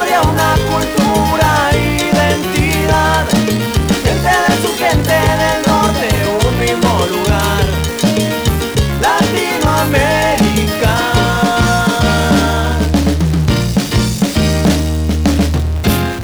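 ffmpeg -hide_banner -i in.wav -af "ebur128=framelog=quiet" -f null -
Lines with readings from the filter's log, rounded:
Integrated loudness:
  I:         -12.8 LUFS
  Threshold: -22.8 LUFS
Loudness range:
  LRA:         1.3 LU
  Threshold: -32.8 LUFS
  LRA low:   -13.6 LUFS
  LRA high:  -12.2 LUFS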